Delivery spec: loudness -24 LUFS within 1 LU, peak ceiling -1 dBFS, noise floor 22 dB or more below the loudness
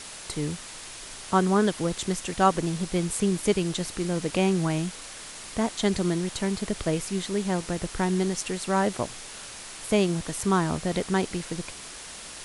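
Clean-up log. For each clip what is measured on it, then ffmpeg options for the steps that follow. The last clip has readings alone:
noise floor -42 dBFS; noise floor target -49 dBFS; loudness -27.0 LUFS; peak -8.0 dBFS; loudness target -24.0 LUFS
-> -af "afftdn=nr=7:nf=-42"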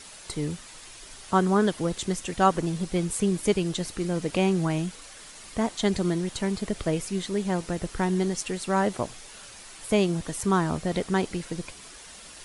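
noise floor -46 dBFS; noise floor target -49 dBFS
-> -af "afftdn=nr=6:nf=-46"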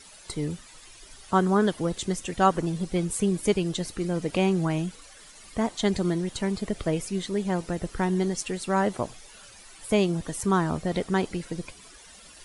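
noise floor -50 dBFS; loudness -27.0 LUFS; peak -8.0 dBFS; loudness target -24.0 LUFS
-> -af "volume=3dB"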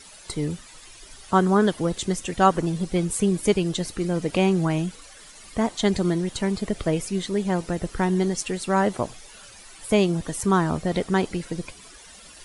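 loudness -24.0 LUFS; peak -5.0 dBFS; noise floor -47 dBFS

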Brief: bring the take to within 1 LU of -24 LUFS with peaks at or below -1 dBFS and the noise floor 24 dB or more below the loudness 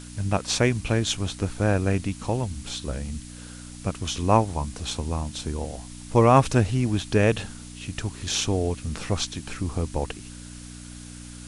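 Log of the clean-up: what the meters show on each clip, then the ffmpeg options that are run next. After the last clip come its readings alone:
hum 60 Hz; harmonics up to 300 Hz; hum level -41 dBFS; noise floor -41 dBFS; noise floor target -50 dBFS; loudness -25.5 LUFS; peak -3.5 dBFS; loudness target -24.0 LUFS
-> -af "bandreject=f=60:t=h:w=4,bandreject=f=120:t=h:w=4,bandreject=f=180:t=h:w=4,bandreject=f=240:t=h:w=4,bandreject=f=300:t=h:w=4"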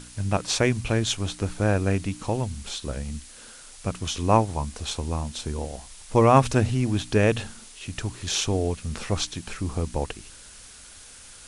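hum none; noise floor -46 dBFS; noise floor target -50 dBFS
-> -af "afftdn=nr=6:nf=-46"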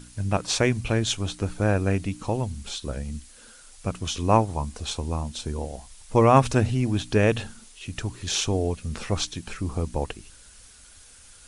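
noise floor -50 dBFS; loudness -25.5 LUFS; peak -3.5 dBFS; loudness target -24.0 LUFS
-> -af "volume=1.5dB"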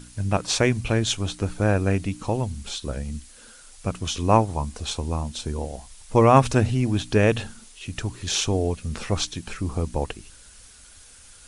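loudness -24.0 LUFS; peak -2.0 dBFS; noise floor -49 dBFS

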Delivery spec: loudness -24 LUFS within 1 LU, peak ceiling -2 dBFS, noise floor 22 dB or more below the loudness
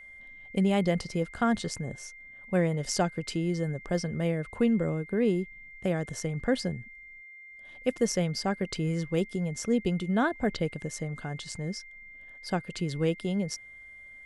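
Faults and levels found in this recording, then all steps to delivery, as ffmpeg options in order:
steady tone 2100 Hz; tone level -46 dBFS; loudness -30.0 LUFS; peak -12.0 dBFS; loudness target -24.0 LUFS
-> -af "bandreject=f=2.1k:w=30"
-af "volume=6dB"

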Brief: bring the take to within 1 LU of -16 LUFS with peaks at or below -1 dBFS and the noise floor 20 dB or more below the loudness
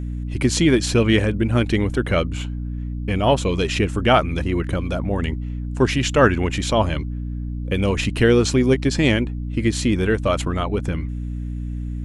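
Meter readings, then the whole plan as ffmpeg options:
hum 60 Hz; harmonics up to 300 Hz; hum level -25 dBFS; loudness -20.5 LUFS; peak -1.0 dBFS; loudness target -16.0 LUFS
-> -af "bandreject=f=60:t=h:w=4,bandreject=f=120:t=h:w=4,bandreject=f=180:t=h:w=4,bandreject=f=240:t=h:w=4,bandreject=f=300:t=h:w=4"
-af "volume=4.5dB,alimiter=limit=-1dB:level=0:latency=1"

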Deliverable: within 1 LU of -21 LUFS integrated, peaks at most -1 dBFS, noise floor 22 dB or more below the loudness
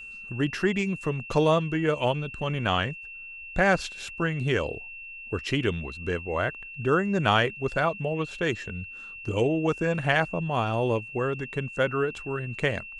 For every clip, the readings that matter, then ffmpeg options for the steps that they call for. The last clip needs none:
steady tone 2700 Hz; tone level -39 dBFS; loudness -27.0 LUFS; peak -7.5 dBFS; loudness target -21.0 LUFS
-> -af "bandreject=f=2.7k:w=30"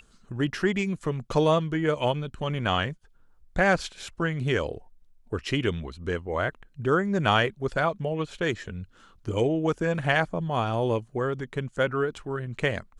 steady tone none; loudness -27.0 LUFS; peak -8.0 dBFS; loudness target -21.0 LUFS
-> -af "volume=6dB"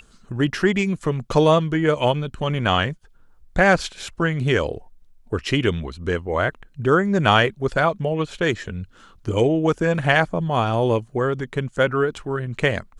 loudness -21.0 LUFS; peak -2.0 dBFS; noise floor -52 dBFS

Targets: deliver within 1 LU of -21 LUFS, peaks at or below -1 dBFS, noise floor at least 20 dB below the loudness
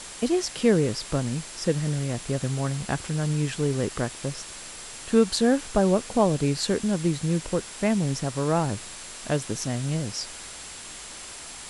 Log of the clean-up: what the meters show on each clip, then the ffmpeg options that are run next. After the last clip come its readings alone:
steady tone 7600 Hz; tone level -47 dBFS; noise floor -41 dBFS; noise floor target -46 dBFS; loudness -26.0 LUFS; peak -7.0 dBFS; loudness target -21.0 LUFS
-> -af "bandreject=f=7.6k:w=30"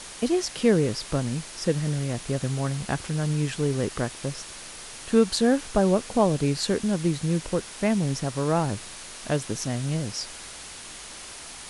steady tone none; noise floor -41 dBFS; noise floor target -46 dBFS
-> -af "afftdn=nr=6:nf=-41"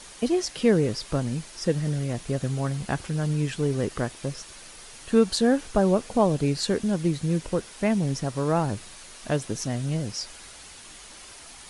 noise floor -46 dBFS; loudness -26.0 LUFS; peak -7.5 dBFS; loudness target -21.0 LUFS
-> -af "volume=5dB"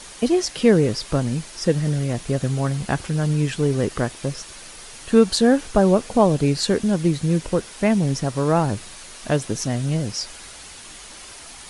loudness -21.0 LUFS; peak -2.5 dBFS; noise floor -41 dBFS

